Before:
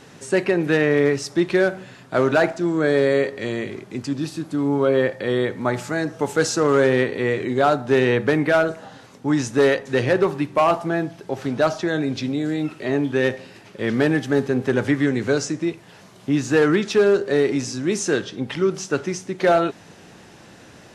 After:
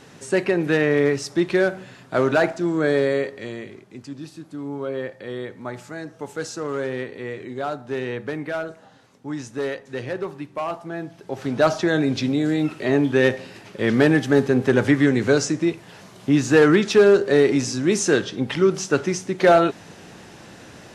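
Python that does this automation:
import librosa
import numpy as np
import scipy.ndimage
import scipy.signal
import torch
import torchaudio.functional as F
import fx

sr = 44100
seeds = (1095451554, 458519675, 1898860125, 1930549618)

y = fx.gain(x, sr, db=fx.line((2.91, -1.0), (3.85, -10.0), (10.83, -10.0), (11.72, 2.5)))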